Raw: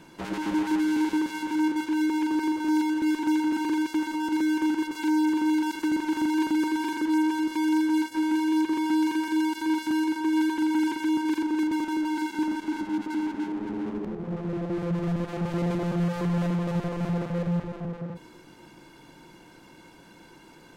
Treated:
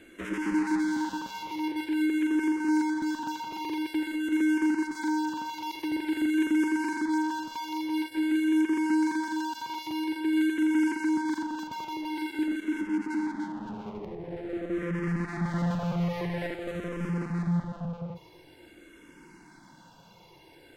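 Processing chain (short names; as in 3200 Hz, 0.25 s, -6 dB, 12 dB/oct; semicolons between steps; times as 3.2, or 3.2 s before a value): bell 1900 Hz +4 dB 0.58 oct, from 14.8 s +11 dB, from 16.54 s +2.5 dB; endless phaser -0.48 Hz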